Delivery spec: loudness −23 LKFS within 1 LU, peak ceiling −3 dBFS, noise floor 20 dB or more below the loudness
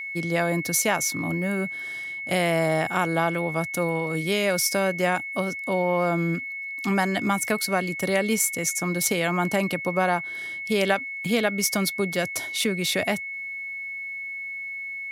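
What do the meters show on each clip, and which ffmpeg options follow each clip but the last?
interfering tone 2,200 Hz; level of the tone −31 dBFS; integrated loudness −25.0 LKFS; sample peak −6.5 dBFS; target loudness −23.0 LKFS
→ -af "bandreject=frequency=2200:width=30"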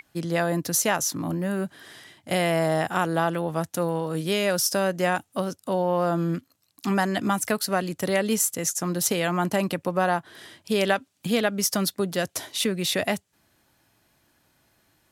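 interfering tone none found; integrated loudness −25.5 LKFS; sample peak −7.0 dBFS; target loudness −23.0 LKFS
→ -af "volume=2.5dB"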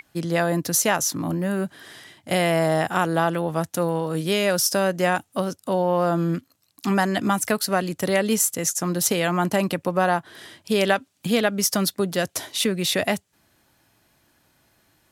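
integrated loudness −23.0 LKFS; sample peak −4.5 dBFS; background noise floor −67 dBFS

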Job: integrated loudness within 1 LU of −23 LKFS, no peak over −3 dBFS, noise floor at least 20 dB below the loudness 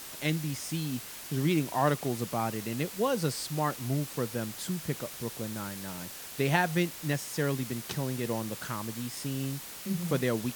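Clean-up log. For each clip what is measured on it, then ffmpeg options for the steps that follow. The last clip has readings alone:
background noise floor −44 dBFS; target noise floor −52 dBFS; integrated loudness −32.0 LKFS; sample peak −10.0 dBFS; target loudness −23.0 LKFS
→ -af "afftdn=noise_reduction=8:noise_floor=-44"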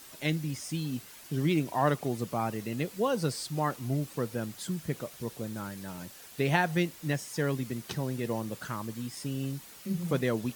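background noise floor −50 dBFS; target noise floor −53 dBFS
→ -af "afftdn=noise_reduction=6:noise_floor=-50"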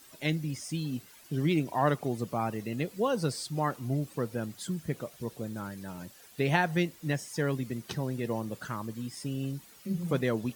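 background noise floor −55 dBFS; integrated loudness −32.5 LKFS; sample peak −10.0 dBFS; target loudness −23.0 LKFS
→ -af "volume=9.5dB,alimiter=limit=-3dB:level=0:latency=1"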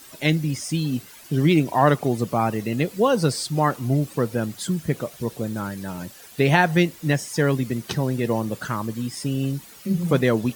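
integrated loudness −23.0 LKFS; sample peak −3.0 dBFS; background noise floor −45 dBFS

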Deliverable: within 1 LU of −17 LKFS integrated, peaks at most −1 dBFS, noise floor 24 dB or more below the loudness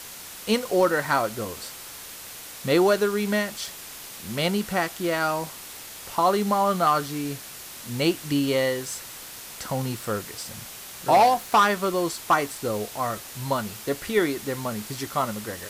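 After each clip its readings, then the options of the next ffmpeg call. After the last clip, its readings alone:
background noise floor −41 dBFS; target noise floor −49 dBFS; integrated loudness −25.0 LKFS; sample peak −10.5 dBFS; target loudness −17.0 LKFS
→ -af "afftdn=noise_reduction=8:noise_floor=-41"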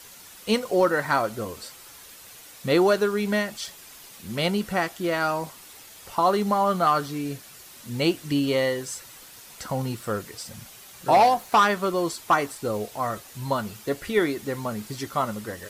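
background noise floor −47 dBFS; target noise floor −49 dBFS
→ -af "afftdn=noise_reduction=6:noise_floor=-47"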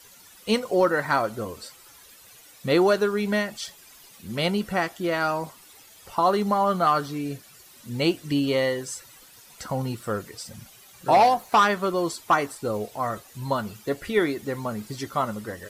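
background noise floor −51 dBFS; integrated loudness −25.0 LKFS; sample peak −10.5 dBFS; target loudness −17.0 LKFS
→ -af "volume=8dB"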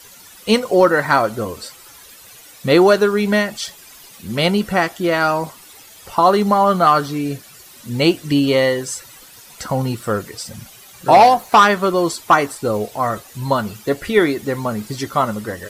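integrated loudness −17.0 LKFS; sample peak −2.5 dBFS; background noise floor −43 dBFS

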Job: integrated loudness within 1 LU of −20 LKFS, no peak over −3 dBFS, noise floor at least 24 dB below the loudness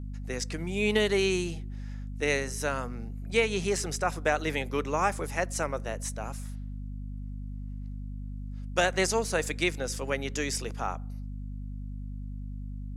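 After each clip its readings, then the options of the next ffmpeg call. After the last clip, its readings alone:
mains hum 50 Hz; hum harmonics up to 250 Hz; level of the hum −35 dBFS; integrated loudness −31.0 LKFS; sample peak −10.0 dBFS; target loudness −20.0 LKFS
→ -af "bandreject=frequency=50:width_type=h:width=6,bandreject=frequency=100:width_type=h:width=6,bandreject=frequency=150:width_type=h:width=6,bandreject=frequency=200:width_type=h:width=6,bandreject=frequency=250:width_type=h:width=6"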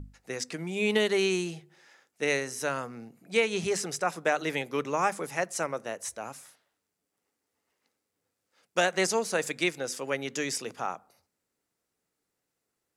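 mains hum none found; integrated loudness −29.5 LKFS; sample peak −10.5 dBFS; target loudness −20.0 LKFS
→ -af "volume=9.5dB,alimiter=limit=-3dB:level=0:latency=1"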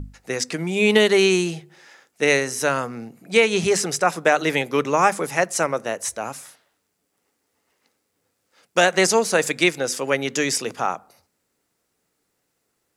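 integrated loudness −20.5 LKFS; sample peak −3.0 dBFS; background noise floor −74 dBFS

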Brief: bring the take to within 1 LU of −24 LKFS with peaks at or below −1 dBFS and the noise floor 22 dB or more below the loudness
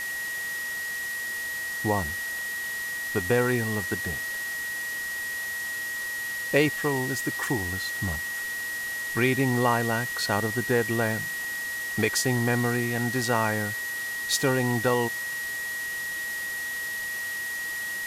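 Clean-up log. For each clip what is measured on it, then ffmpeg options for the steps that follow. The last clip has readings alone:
interfering tone 1,900 Hz; level of the tone −30 dBFS; background noise floor −32 dBFS; target noise floor −49 dBFS; integrated loudness −27.0 LKFS; sample peak −8.0 dBFS; target loudness −24.0 LKFS
→ -af "bandreject=frequency=1900:width=30"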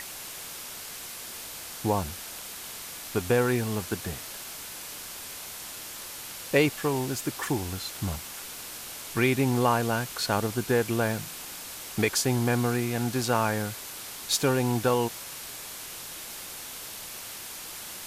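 interfering tone none found; background noise floor −40 dBFS; target noise floor −52 dBFS
→ -af "afftdn=noise_reduction=12:noise_floor=-40"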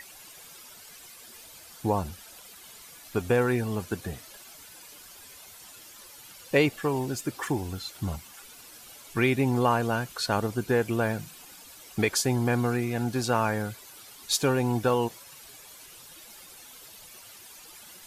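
background noise floor −49 dBFS; target noise floor −50 dBFS
→ -af "afftdn=noise_reduction=6:noise_floor=-49"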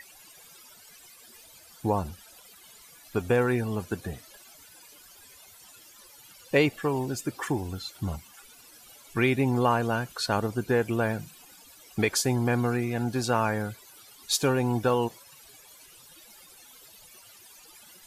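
background noise floor −53 dBFS; integrated loudness −27.5 LKFS; sample peak −9.0 dBFS; target loudness −24.0 LKFS
→ -af "volume=3.5dB"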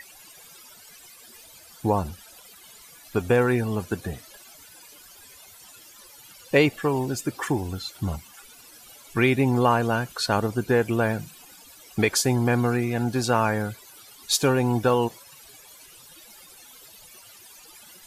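integrated loudness −24.0 LKFS; sample peak −5.5 dBFS; background noise floor −49 dBFS

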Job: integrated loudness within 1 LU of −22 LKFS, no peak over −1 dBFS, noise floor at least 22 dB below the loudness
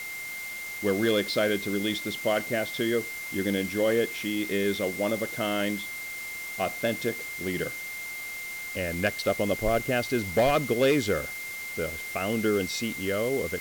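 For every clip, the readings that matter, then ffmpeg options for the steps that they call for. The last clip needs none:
interfering tone 2,100 Hz; level of the tone −35 dBFS; background noise floor −37 dBFS; target noise floor −50 dBFS; integrated loudness −28.0 LKFS; sample peak −14.5 dBFS; target loudness −22.0 LKFS
→ -af "bandreject=frequency=2100:width=30"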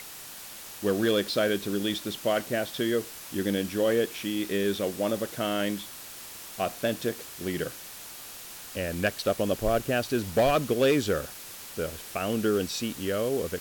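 interfering tone none found; background noise floor −43 dBFS; target noise floor −51 dBFS
→ -af "afftdn=noise_reduction=8:noise_floor=-43"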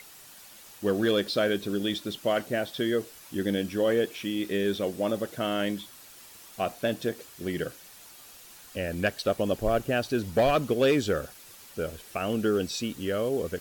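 background noise floor −50 dBFS; target noise floor −51 dBFS
→ -af "afftdn=noise_reduction=6:noise_floor=-50"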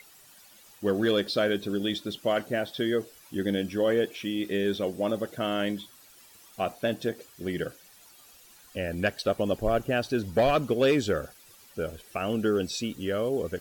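background noise floor −55 dBFS; integrated loudness −28.5 LKFS; sample peak −15.0 dBFS; target loudness −22.0 LKFS
→ -af "volume=6.5dB"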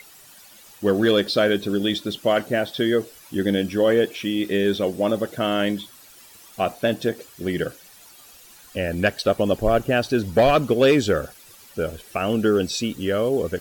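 integrated loudness −22.0 LKFS; sample peak −8.5 dBFS; background noise floor −48 dBFS

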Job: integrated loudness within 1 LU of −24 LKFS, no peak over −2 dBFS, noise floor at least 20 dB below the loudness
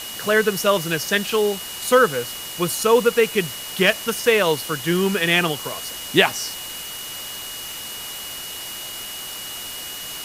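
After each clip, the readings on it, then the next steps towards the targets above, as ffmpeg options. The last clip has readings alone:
interfering tone 2,900 Hz; level of the tone −35 dBFS; background noise floor −33 dBFS; target noise floor −42 dBFS; integrated loudness −21.5 LKFS; sample peak −2.5 dBFS; target loudness −24.0 LKFS
→ -af "bandreject=frequency=2900:width=30"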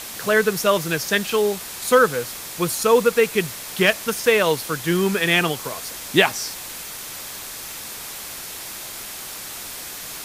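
interfering tone none found; background noise floor −34 dBFS; target noise floor −42 dBFS
→ -af "afftdn=noise_reduction=8:noise_floor=-34"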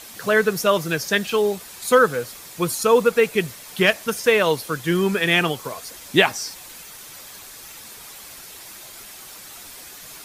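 background noise floor −41 dBFS; integrated loudness −20.0 LKFS; sample peak −3.0 dBFS; target loudness −24.0 LKFS
→ -af "volume=-4dB"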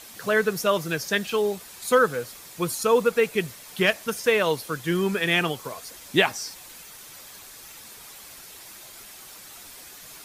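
integrated loudness −24.0 LKFS; sample peak −7.0 dBFS; background noise floor −45 dBFS

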